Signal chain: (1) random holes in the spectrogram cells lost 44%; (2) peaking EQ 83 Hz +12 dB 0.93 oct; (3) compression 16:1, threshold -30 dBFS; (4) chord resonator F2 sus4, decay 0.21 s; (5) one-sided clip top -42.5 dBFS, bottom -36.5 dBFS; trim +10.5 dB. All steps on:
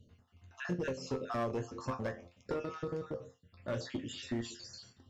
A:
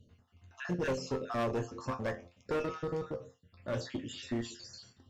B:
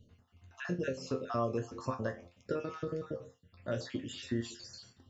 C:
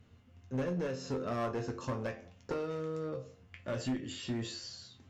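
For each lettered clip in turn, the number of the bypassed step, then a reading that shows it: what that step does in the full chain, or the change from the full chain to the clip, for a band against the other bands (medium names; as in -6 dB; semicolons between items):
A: 3, mean gain reduction 2.0 dB; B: 5, distortion -12 dB; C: 1, 2 kHz band -3.5 dB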